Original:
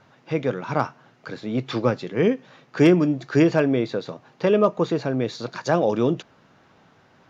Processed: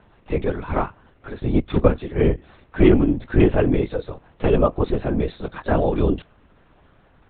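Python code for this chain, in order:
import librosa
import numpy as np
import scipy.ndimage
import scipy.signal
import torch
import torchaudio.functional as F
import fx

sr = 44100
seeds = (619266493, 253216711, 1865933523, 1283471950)

y = fx.low_shelf(x, sr, hz=260.0, db=7.0)
y = fx.transient(y, sr, attack_db=7, sustain_db=-5, at=(1.36, 1.88))
y = fx.lpc_vocoder(y, sr, seeds[0], excitation='whisper', order=10)
y = y * 10.0 ** (-1.0 / 20.0)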